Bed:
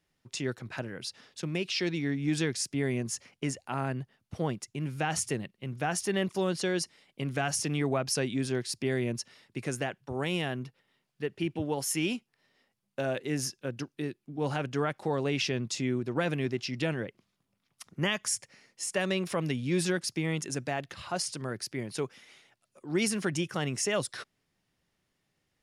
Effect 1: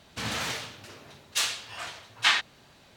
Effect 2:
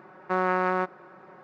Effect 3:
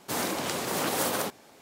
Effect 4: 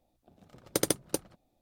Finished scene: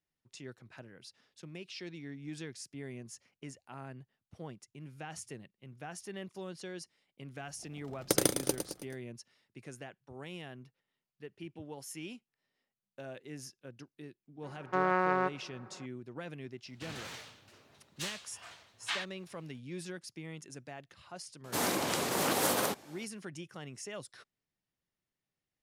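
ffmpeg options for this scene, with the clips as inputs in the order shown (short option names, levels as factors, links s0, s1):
-filter_complex "[0:a]volume=0.2[s0];[4:a]aecho=1:1:108|216|324|432|540|648:0.422|0.207|0.101|0.0496|0.0243|0.0119[s1];[3:a]aresample=32000,aresample=44100[s2];[s1]atrim=end=1.61,asetpts=PTS-STARTPTS,afade=t=in:d=0.004:c=hsin,afade=t=out:st=1.606:d=0.004:c=hsin,adelay=7350[s3];[2:a]atrim=end=1.43,asetpts=PTS-STARTPTS,volume=0.631,afade=t=in:d=0.004:c=hsin,afade=t=out:st=1.426:d=0.004:c=hsin,adelay=14430[s4];[1:a]atrim=end=2.96,asetpts=PTS-STARTPTS,volume=0.211,afade=t=in:d=0.02,afade=t=out:st=2.94:d=0.02,adelay=16640[s5];[s2]atrim=end=1.61,asetpts=PTS-STARTPTS,volume=0.841,afade=t=in:d=0.004:c=hsin,afade=t=out:st=1.606:d=0.004:c=hsin,adelay=21440[s6];[s0][s3][s4][s5][s6]amix=inputs=5:normalize=0"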